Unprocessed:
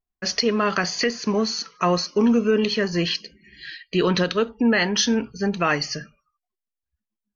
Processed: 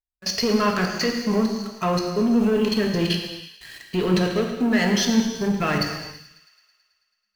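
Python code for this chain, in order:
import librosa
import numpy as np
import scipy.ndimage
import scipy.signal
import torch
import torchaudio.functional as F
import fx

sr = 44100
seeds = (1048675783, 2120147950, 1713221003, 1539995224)

p1 = fx.notch(x, sr, hz=3800.0, q=19.0)
p2 = fx.quant_dither(p1, sr, seeds[0], bits=6, dither='none')
p3 = p1 + F.gain(torch.from_numpy(p2), -5.0).numpy()
p4 = fx.low_shelf(p3, sr, hz=97.0, db=11.0)
p5 = fx.level_steps(p4, sr, step_db=21)
p6 = fx.hpss(p5, sr, part='percussive', gain_db=-4)
p7 = fx.leveller(p6, sr, passes=2)
p8 = p7 + fx.echo_wet_highpass(p7, sr, ms=109, feedback_pct=71, hz=2100.0, wet_db=-16.5, dry=0)
p9 = fx.rev_gated(p8, sr, seeds[1], gate_ms=440, shape='falling', drr_db=1.5)
y = F.gain(torch.from_numpy(p9), -5.5).numpy()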